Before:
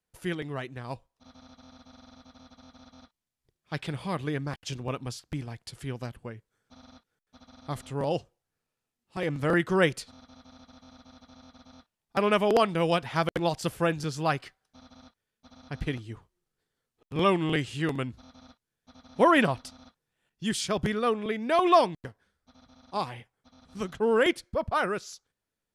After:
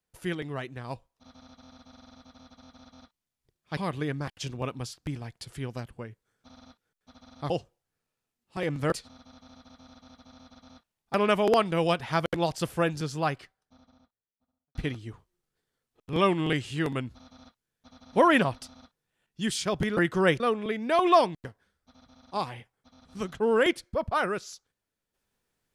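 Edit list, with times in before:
3.77–4.03 s: delete
7.76–8.10 s: delete
9.52–9.95 s: move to 21.00 s
13.95–15.78 s: studio fade out

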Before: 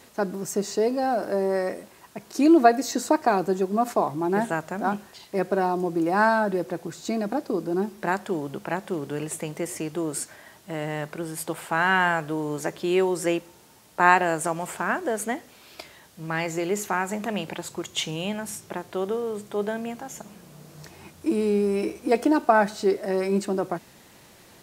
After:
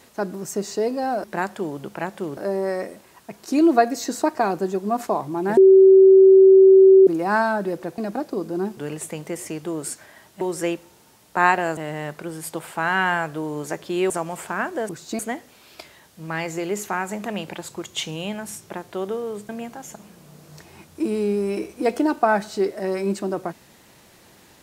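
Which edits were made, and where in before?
4.44–5.94 s: bleep 383 Hz -7 dBFS
6.85–7.15 s: move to 15.19 s
7.94–9.07 s: move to 1.24 s
13.04–14.40 s: move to 10.71 s
19.49–19.75 s: delete

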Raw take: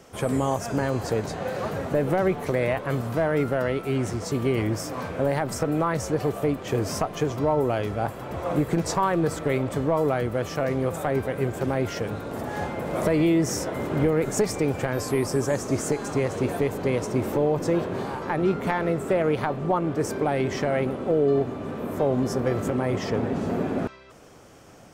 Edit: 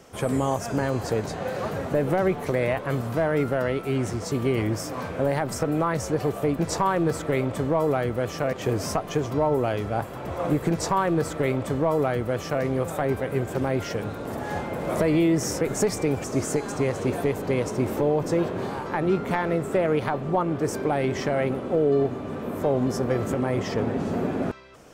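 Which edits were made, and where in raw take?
8.76–10.70 s: copy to 6.59 s
13.67–14.18 s: delete
14.81–15.60 s: delete

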